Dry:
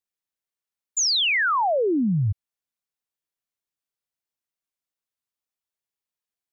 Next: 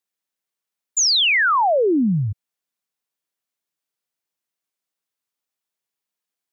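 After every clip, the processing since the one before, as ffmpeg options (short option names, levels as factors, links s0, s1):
-af "highpass=140,volume=1.68"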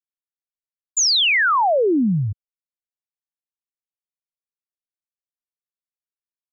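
-af "anlmdn=0.0631"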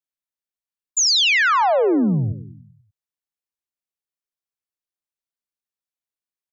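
-af "aecho=1:1:97|194|291|388|485|582:0.224|0.125|0.0702|0.0393|0.022|0.0123"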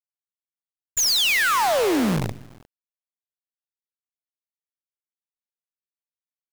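-af "acrusher=bits=4:dc=4:mix=0:aa=0.000001,volume=0.596"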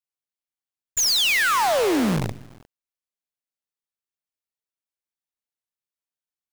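-af "equalizer=f=14000:w=2:g=-2.5"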